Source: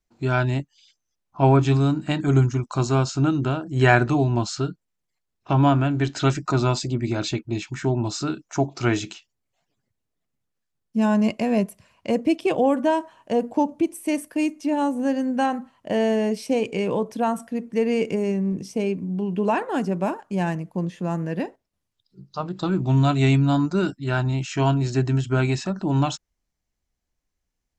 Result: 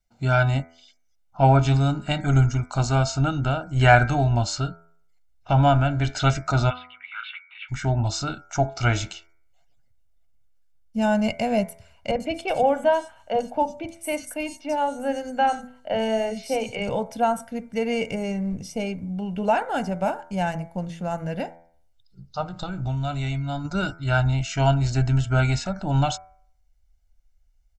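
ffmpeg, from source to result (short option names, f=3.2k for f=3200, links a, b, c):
-filter_complex "[0:a]asplit=3[a][b][c];[a]afade=t=out:st=6.69:d=0.02[d];[b]asuperpass=centerf=1900:order=12:qfactor=0.87,afade=t=in:st=6.69:d=0.02,afade=t=out:st=7.68:d=0.02[e];[c]afade=t=in:st=7.68:d=0.02[f];[d][e][f]amix=inputs=3:normalize=0,asettb=1/sr,asplit=3[g][h][i];[g]atrim=end=12.114[j];[h]atrim=start=12.11:end=16.89,asetpts=PTS-STARTPTS,afade=t=in:d=0.004:c=qsin,afade=t=out:st=4.776:d=0.004:c=qsin,acrossover=split=240|4200[k][l][m];[k]adelay=40[n];[m]adelay=90[o];[n][l][o]amix=inputs=3:normalize=0,atrim=end_sample=210798[p];[i]atrim=start=16.886[q];[j][p]acrossfade=d=0.004:c1=hsin:c2=qsin[r];[r][q]acrossfade=d=0.004:c1=qsin:c2=hsin,asplit=3[s][t][u];[s]afade=t=out:st=22.48:d=0.02[v];[t]acompressor=threshold=-25dB:ratio=5:attack=3.2:release=140:knee=1:detection=peak,afade=t=in:st=22.48:d=0.02,afade=t=out:st=23.64:d=0.02[w];[u]afade=t=in:st=23.64:d=0.02[x];[v][w][x]amix=inputs=3:normalize=0,bandreject=f=83.48:t=h:w=4,bandreject=f=166.96:t=h:w=4,bandreject=f=250.44:t=h:w=4,bandreject=f=333.92:t=h:w=4,bandreject=f=417.4:t=h:w=4,bandreject=f=500.88:t=h:w=4,bandreject=f=584.36:t=h:w=4,bandreject=f=667.84:t=h:w=4,bandreject=f=751.32:t=h:w=4,bandreject=f=834.8:t=h:w=4,bandreject=f=918.28:t=h:w=4,bandreject=f=1.00176k:t=h:w=4,bandreject=f=1.08524k:t=h:w=4,bandreject=f=1.16872k:t=h:w=4,bandreject=f=1.2522k:t=h:w=4,bandreject=f=1.33568k:t=h:w=4,bandreject=f=1.41916k:t=h:w=4,bandreject=f=1.50264k:t=h:w=4,bandreject=f=1.58612k:t=h:w=4,bandreject=f=1.6696k:t=h:w=4,bandreject=f=1.75308k:t=h:w=4,bandreject=f=1.83656k:t=h:w=4,bandreject=f=1.92004k:t=h:w=4,bandreject=f=2.00352k:t=h:w=4,bandreject=f=2.087k:t=h:w=4,bandreject=f=2.17048k:t=h:w=4,bandreject=f=2.25396k:t=h:w=4,bandreject=f=2.33744k:t=h:w=4,asubboost=boost=7.5:cutoff=58,aecho=1:1:1.4:0.69"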